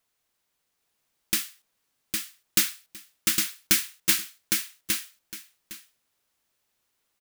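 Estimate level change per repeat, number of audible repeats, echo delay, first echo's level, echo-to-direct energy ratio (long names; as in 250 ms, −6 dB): −15.0 dB, 2, 809 ms, −4.0 dB, −4.0 dB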